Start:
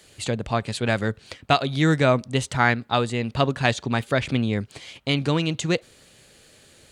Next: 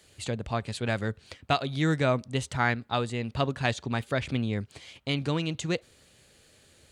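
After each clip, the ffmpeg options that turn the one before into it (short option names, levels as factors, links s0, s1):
-af "equalizer=f=75:t=o:w=0.77:g=6,volume=0.473"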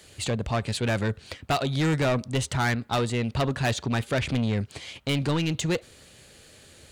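-af "asoftclip=type=tanh:threshold=0.0422,volume=2.37"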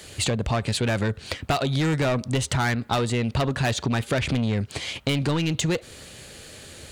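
-af "acompressor=threshold=0.0316:ratio=6,volume=2.66"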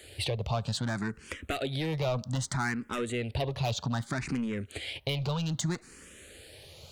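-filter_complex "[0:a]asplit=2[s0][s1];[s1]afreqshift=0.63[s2];[s0][s2]amix=inputs=2:normalize=1,volume=0.562"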